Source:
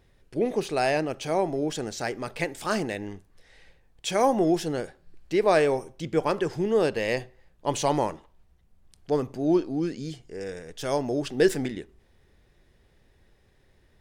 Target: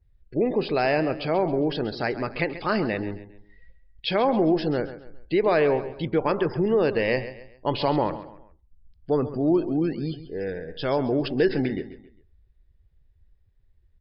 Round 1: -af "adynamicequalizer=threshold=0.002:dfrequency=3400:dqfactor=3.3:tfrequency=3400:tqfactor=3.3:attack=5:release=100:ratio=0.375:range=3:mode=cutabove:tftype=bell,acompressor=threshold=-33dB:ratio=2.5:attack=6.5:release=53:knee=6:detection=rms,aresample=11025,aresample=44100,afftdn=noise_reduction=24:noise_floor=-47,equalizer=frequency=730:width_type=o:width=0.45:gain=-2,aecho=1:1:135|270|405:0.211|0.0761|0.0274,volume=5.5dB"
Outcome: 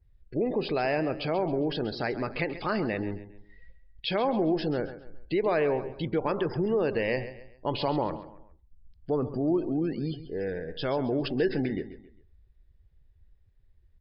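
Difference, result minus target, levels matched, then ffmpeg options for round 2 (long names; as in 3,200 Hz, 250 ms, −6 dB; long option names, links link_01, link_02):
downward compressor: peak gain reduction +5 dB
-af "adynamicequalizer=threshold=0.002:dfrequency=3400:dqfactor=3.3:tfrequency=3400:tqfactor=3.3:attack=5:release=100:ratio=0.375:range=3:mode=cutabove:tftype=bell,acompressor=threshold=-24.5dB:ratio=2.5:attack=6.5:release=53:knee=6:detection=rms,aresample=11025,aresample=44100,afftdn=noise_reduction=24:noise_floor=-47,equalizer=frequency=730:width_type=o:width=0.45:gain=-2,aecho=1:1:135|270|405:0.211|0.0761|0.0274,volume=5.5dB"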